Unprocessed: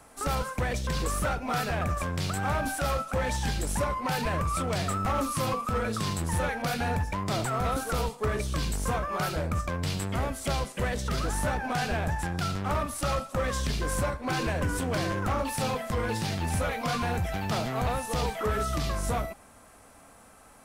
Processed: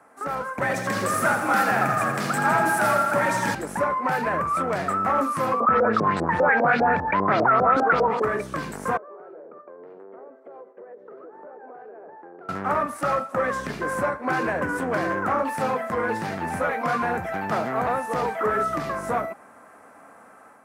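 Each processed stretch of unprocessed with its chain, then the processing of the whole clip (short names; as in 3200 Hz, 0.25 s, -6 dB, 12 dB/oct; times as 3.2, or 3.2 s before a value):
0.61–3.55 high shelf 2900 Hz +10.5 dB + frequency shift +52 Hz + lo-fi delay 82 ms, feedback 80%, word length 8-bit, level -8 dB
5.6–8.22 LFO low-pass saw up 5 Hz 450–5400 Hz + fast leveller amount 70%
8.97–12.49 ladder band-pass 460 Hz, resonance 65% + compressor 10:1, threshold -44 dBFS
whole clip: HPF 230 Hz 12 dB/oct; resonant high shelf 2400 Hz -11.5 dB, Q 1.5; AGC gain up to 5.5 dB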